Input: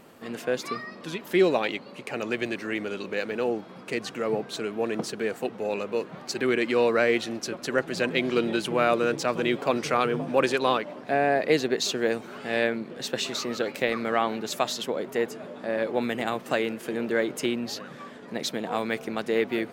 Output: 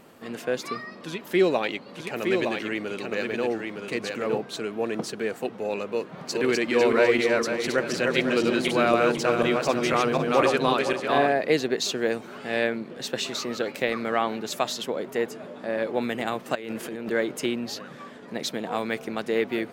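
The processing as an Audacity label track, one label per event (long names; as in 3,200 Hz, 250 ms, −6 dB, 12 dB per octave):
0.970000	4.380000	single-tap delay 914 ms −4.5 dB
5.930000	11.330000	feedback delay that plays each chunk backwards 250 ms, feedback 48%, level −2 dB
16.550000	17.110000	compressor whose output falls as the input rises −34 dBFS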